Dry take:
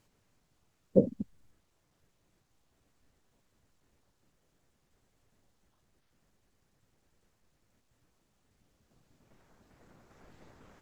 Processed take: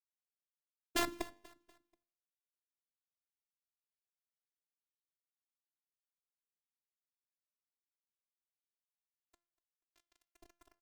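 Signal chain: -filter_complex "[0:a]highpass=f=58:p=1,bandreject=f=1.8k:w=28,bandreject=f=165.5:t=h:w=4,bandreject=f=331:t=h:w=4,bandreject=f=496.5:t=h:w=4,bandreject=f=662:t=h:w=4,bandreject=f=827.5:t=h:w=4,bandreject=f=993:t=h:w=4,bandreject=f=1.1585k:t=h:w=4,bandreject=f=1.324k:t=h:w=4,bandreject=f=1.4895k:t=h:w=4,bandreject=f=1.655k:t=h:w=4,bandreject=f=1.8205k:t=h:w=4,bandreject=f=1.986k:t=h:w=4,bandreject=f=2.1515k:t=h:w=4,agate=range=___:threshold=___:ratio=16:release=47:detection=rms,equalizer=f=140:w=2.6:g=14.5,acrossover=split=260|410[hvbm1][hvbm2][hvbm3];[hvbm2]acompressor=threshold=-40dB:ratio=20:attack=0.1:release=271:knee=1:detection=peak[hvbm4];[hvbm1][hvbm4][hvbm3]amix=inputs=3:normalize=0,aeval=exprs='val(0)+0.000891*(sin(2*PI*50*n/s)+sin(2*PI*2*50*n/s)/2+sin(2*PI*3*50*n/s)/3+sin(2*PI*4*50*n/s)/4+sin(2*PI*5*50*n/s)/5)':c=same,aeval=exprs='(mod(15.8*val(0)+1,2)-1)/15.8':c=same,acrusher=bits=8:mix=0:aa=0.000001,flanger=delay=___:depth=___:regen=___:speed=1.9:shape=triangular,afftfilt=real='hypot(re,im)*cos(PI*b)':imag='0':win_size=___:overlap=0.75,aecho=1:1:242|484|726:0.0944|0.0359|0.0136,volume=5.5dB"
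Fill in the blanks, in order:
-14dB, -56dB, 8.3, 2.4, 88, 512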